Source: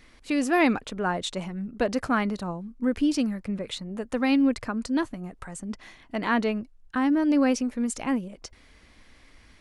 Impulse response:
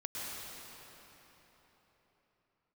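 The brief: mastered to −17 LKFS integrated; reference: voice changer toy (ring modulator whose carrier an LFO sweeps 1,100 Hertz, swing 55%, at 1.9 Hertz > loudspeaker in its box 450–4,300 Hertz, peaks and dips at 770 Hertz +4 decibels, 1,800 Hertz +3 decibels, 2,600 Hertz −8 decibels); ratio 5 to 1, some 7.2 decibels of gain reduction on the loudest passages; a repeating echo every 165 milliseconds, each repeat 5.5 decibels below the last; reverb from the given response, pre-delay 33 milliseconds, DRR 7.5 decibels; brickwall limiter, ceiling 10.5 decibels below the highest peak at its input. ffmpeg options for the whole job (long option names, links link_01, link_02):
-filter_complex "[0:a]acompressor=threshold=-26dB:ratio=5,alimiter=level_in=3dB:limit=-24dB:level=0:latency=1,volume=-3dB,aecho=1:1:165|330|495|660|825|990|1155:0.531|0.281|0.149|0.079|0.0419|0.0222|0.0118,asplit=2[link_01][link_02];[1:a]atrim=start_sample=2205,adelay=33[link_03];[link_02][link_03]afir=irnorm=-1:irlink=0,volume=-10dB[link_04];[link_01][link_04]amix=inputs=2:normalize=0,aeval=exprs='val(0)*sin(2*PI*1100*n/s+1100*0.55/1.9*sin(2*PI*1.9*n/s))':channel_layout=same,highpass=450,equalizer=frequency=770:width_type=q:width=4:gain=4,equalizer=frequency=1800:width_type=q:width=4:gain=3,equalizer=frequency=2600:width_type=q:width=4:gain=-8,lowpass=frequency=4300:width=0.5412,lowpass=frequency=4300:width=1.3066,volume=18.5dB"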